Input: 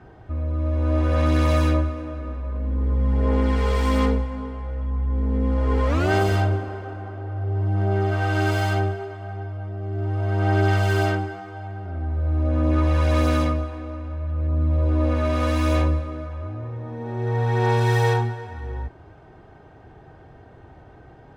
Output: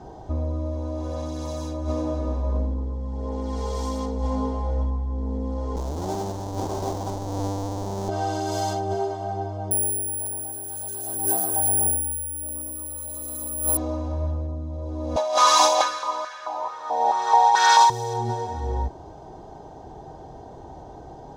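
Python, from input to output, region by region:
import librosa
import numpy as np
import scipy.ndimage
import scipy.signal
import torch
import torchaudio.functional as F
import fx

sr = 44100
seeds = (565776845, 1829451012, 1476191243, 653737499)

y = fx.chain(x, sr, fx.halfwave_hold(),
    fx.high_shelf(hz=2300.0, db=-12.0),
    fx.over_compress(threshold_db=-27.0, ratio=-1.0), at=(5.76, 8.09))
y = fx.chain(y, sr, fx.resample_bad(factor=4, down='filtered', up='zero_stuff'),
    fx.filter_lfo_notch(shape='square', hz=8.1, low_hz=860.0, high_hz=6300.0, q=2.0), at=(9.71, 13.77))
y = fx.chain(y, sr, fx.peak_eq(hz=3600.0, db=9.5, octaves=2.9),
    fx.filter_held_highpass(hz=4.6, low_hz=720.0, high_hz=1600.0), at=(15.16, 17.9))
y = fx.band_shelf(y, sr, hz=1700.0, db=-14.0, octaves=1.7)
y = fx.over_compress(y, sr, threshold_db=-26.0, ratio=-1.0)
y = fx.graphic_eq_15(y, sr, hz=(100, 1000, 6300), db=(-8, 12, 11))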